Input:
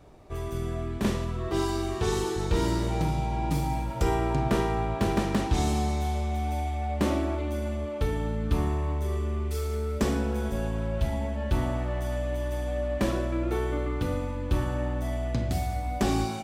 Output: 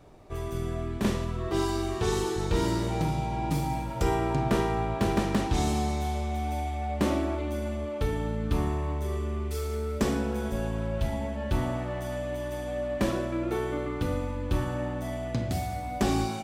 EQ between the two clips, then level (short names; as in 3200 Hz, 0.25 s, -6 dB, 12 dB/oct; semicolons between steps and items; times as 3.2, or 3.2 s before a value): bell 63 Hz -10.5 dB 0.23 oct; 0.0 dB